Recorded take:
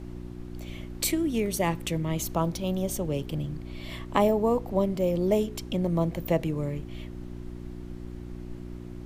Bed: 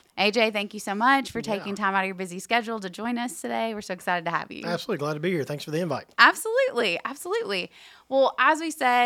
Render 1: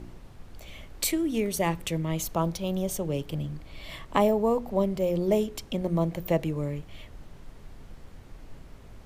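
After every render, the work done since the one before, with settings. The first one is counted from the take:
hum removal 60 Hz, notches 6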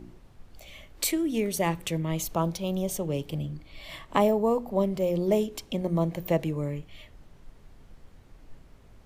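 noise reduction from a noise print 6 dB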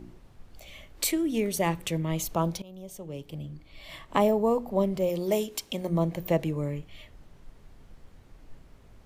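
0:02.62–0:04.34: fade in, from −20 dB
0:05.09–0:05.89: spectral tilt +2 dB per octave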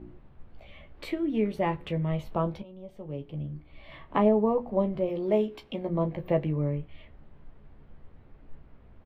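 high-frequency loss of the air 440 metres
on a send: ambience of single reflections 14 ms −6.5 dB, 33 ms −15.5 dB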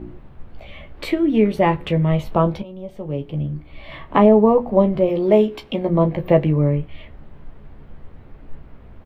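level +11 dB
brickwall limiter −3 dBFS, peak gain reduction 2.5 dB

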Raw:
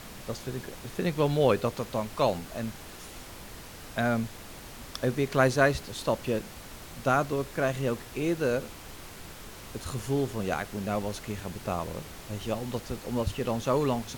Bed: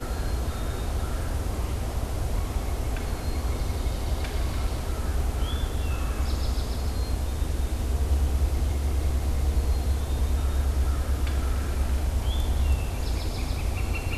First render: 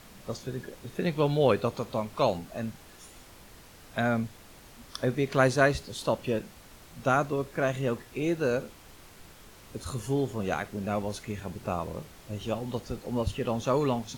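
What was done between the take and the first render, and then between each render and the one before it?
noise reduction from a noise print 7 dB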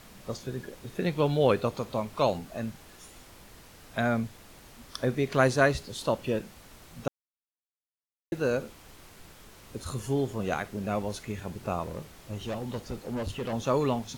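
0:07.08–0:08.32: silence
0:11.83–0:13.53: hard clipping −29 dBFS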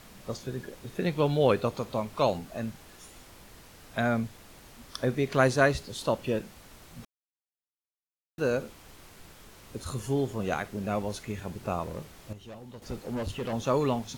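0:07.05–0:08.38: silence
0:12.33–0:12.82: clip gain −10.5 dB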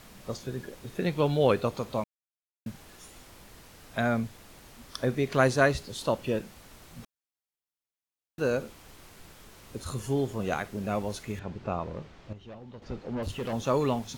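0:02.04–0:02.66: silence
0:11.39–0:13.23: high-frequency loss of the air 160 metres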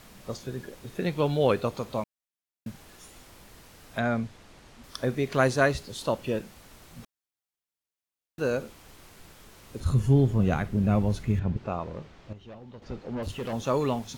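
0:03.99–0:04.84: high-frequency loss of the air 52 metres
0:09.80–0:11.57: bass and treble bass +14 dB, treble −5 dB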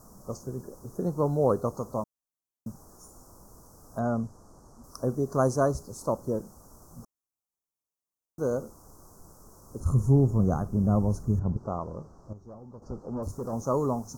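elliptic band-stop filter 1,200–5,800 Hz, stop band 60 dB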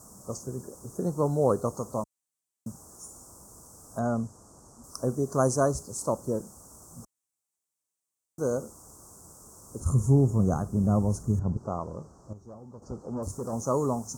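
high-pass filter 52 Hz
parametric band 8,100 Hz +11.5 dB 0.78 octaves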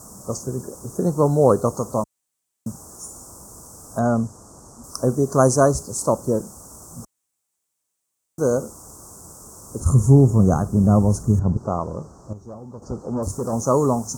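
level +8.5 dB

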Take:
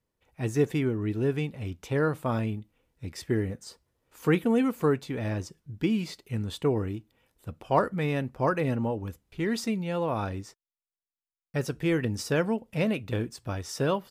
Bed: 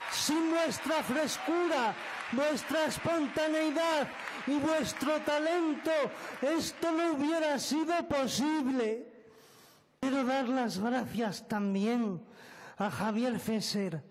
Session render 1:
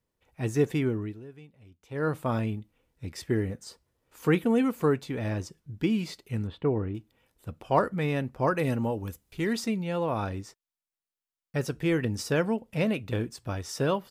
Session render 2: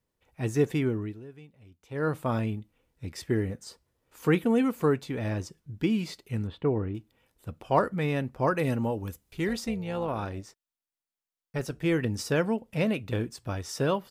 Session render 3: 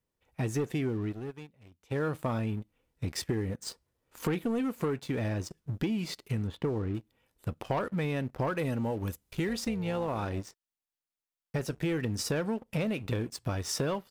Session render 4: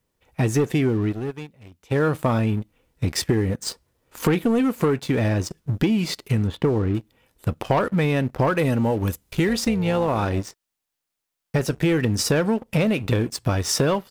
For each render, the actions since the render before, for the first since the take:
0:00.97–0:02.09: duck −19.5 dB, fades 0.31 s quadratic; 0:06.47–0:06.95: high-frequency loss of the air 430 metres; 0:08.58–0:09.53: high-shelf EQ 5,200 Hz +10.5 dB
0:09.48–0:11.84: amplitude modulation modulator 280 Hz, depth 35%
leveller curve on the samples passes 2; downward compressor 6 to 1, threshold −29 dBFS, peak gain reduction 13.5 dB
level +10.5 dB

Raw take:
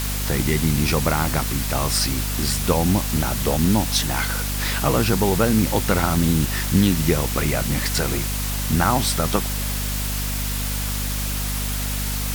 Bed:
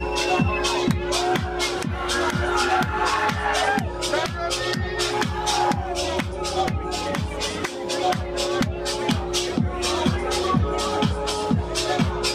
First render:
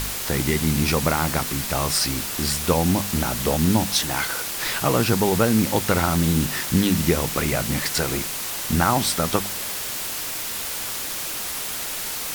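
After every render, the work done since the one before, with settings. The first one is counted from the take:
hum removal 50 Hz, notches 5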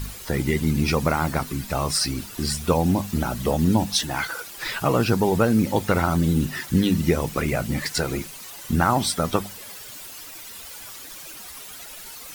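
broadband denoise 13 dB, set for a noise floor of −29 dBFS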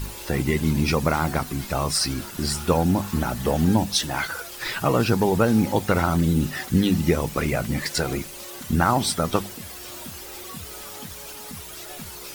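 mix in bed −19.5 dB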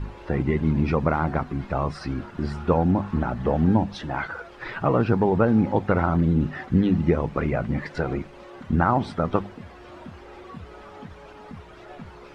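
low-pass filter 1,600 Hz 12 dB per octave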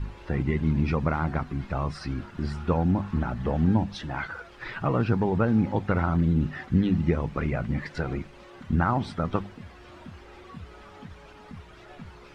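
parametric band 560 Hz −6.5 dB 2.6 octaves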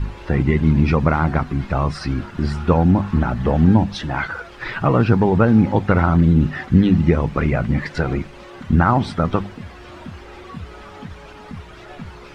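level +9 dB
brickwall limiter −3 dBFS, peak gain reduction 2.5 dB

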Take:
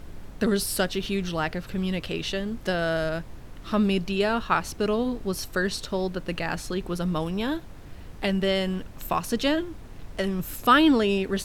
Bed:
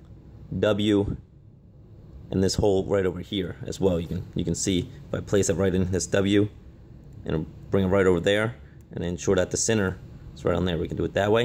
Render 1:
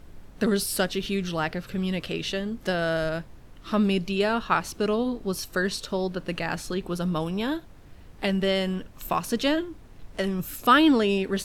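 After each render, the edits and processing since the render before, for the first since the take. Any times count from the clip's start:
noise reduction from a noise print 6 dB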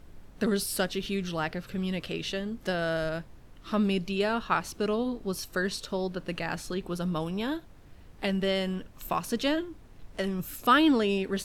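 level −3.5 dB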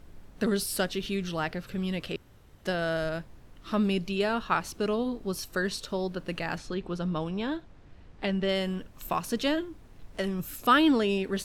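0:02.16–0:02.65: fill with room tone
0:06.58–0:08.49: high-frequency loss of the air 81 metres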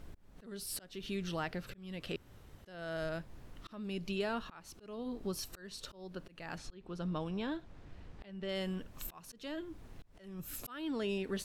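downward compressor 2 to 1, threshold −39 dBFS, peak gain reduction 12.5 dB
volume swells 388 ms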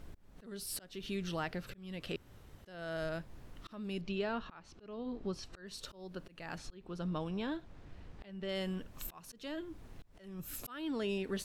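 0:04.01–0:05.67: high-frequency loss of the air 120 metres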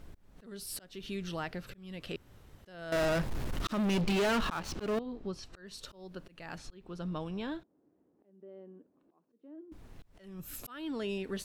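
0:02.92–0:04.99: leveller curve on the samples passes 5
0:07.63–0:09.72: four-pole ladder band-pass 360 Hz, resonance 45%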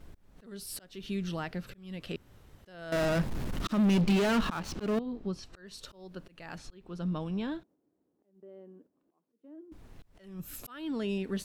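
noise gate −60 dBFS, range −6 dB
dynamic equaliser 200 Hz, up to +6 dB, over −47 dBFS, Q 1.4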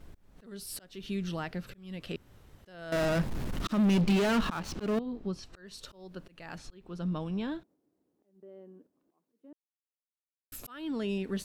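0:09.53–0:10.52: silence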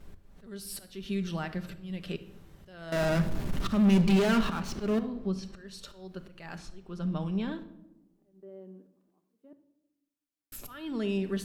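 rectangular room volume 2,600 cubic metres, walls furnished, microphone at 1.2 metres

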